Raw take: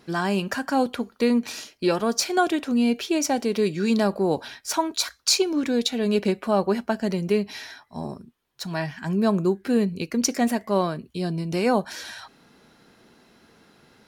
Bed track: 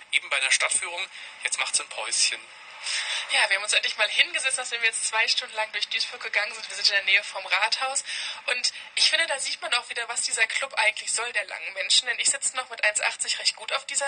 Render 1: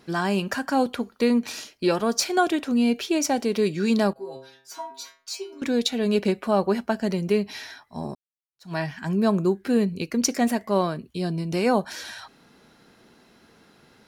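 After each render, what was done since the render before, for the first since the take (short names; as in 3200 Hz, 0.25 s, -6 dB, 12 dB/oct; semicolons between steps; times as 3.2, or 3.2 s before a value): 4.13–5.62 metallic resonator 130 Hz, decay 0.52 s, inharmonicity 0.002; 8.15–8.73 fade in exponential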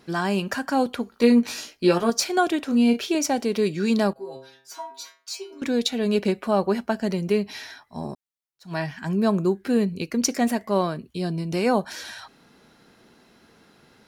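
1.11–2.1 doubler 17 ms -3 dB; 2.65–3.15 doubler 34 ms -8 dB; 4.74–5.51 Bessel high-pass 340 Hz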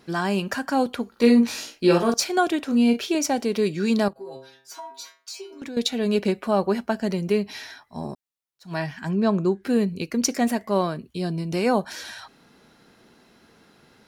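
1.11–2.14 doubler 47 ms -6 dB; 4.08–5.77 compressor, threshold -32 dBFS; 9.1–9.61 LPF 4500 Hz -> 8000 Hz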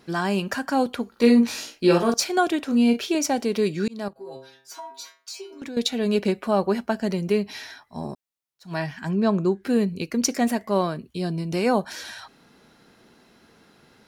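3.88–4.3 fade in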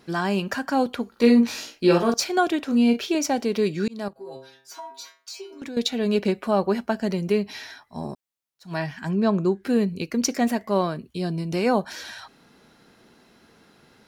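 dynamic EQ 9500 Hz, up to -5 dB, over -50 dBFS, Q 1.3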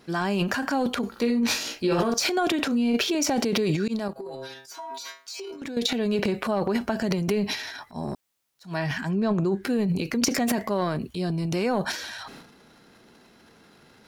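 compressor 6:1, threshold -21 dBFS, peak gain reduction 9.5 dB; transient shaper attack -1 dB, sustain +12 dB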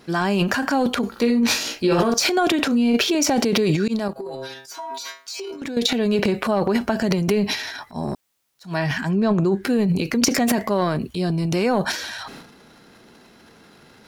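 gain +5 dB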